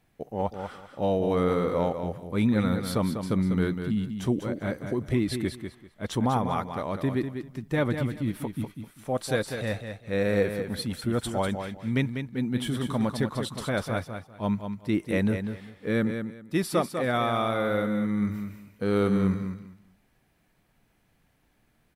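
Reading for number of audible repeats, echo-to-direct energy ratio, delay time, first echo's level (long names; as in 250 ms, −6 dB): 3, −7.5 dB, 196 ms, −7.5 dB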